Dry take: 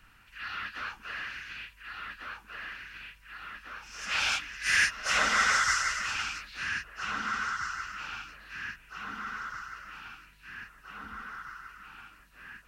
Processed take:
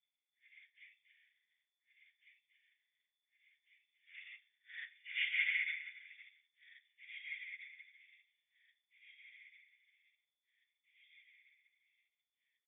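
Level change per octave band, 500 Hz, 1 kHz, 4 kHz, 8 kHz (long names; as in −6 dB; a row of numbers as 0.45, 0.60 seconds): below −40 dB, below −40 dB, −15.5 dB, below −40 dB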